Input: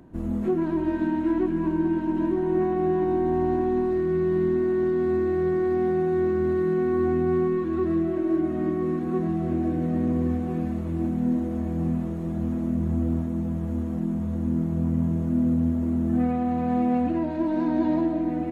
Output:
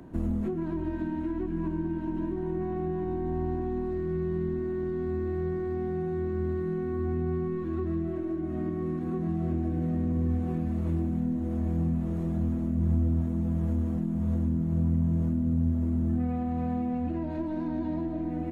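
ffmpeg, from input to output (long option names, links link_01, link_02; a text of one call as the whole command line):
ffmpeg -i in.wav -filter_complex "[0:a]acrossover=split=150[link_01][link_02];[link_02]acompressor=threshold=-34dB:ratio=10[link_03];[link_01][link_03]amix=inputs=2:normalize=0,volume=3dB" out.wav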